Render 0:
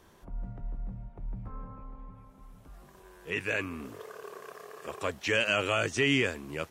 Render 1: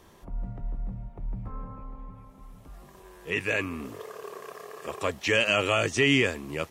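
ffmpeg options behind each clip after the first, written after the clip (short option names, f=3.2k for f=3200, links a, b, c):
-af "bandreject=f=1.5k:w=10,volume=4dB"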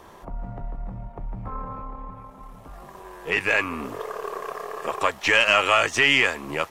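-filter_complex "[0:a]aeval=exprs='if(lt(val(0),0),0.708*val(0),val(0))':c=same,equalizer=f=900:w=0.59:g=9.5,acrossover=split=830[a][b];[a]acompressor=threshold=-32dB:ratio=6[c];[c][b]amix=inputs=2:normalize=0,volume=4dB"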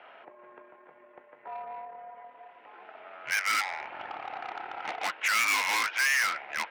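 -filter_complex "[0:a]highpass=f=300:t=q:w=0.5412,highpass=f=300:t=q:w=1.307,lowpass=f=3k:t=q:w=0.5176,lowpass=f=3k:t=q:w=0.7071,lowpass=f=3k:t=q:w=1.932,afreqshift=-340,asplit=2[a][b];[b]highpass=f=720:p=1,volume=26dB,asoftclip=type=tanh:threshold=-5dB[c];[a][c]amix=inputs=2:normalize=0,lowpass=f=2.1k:p=1,volume=-6dB,aderivative"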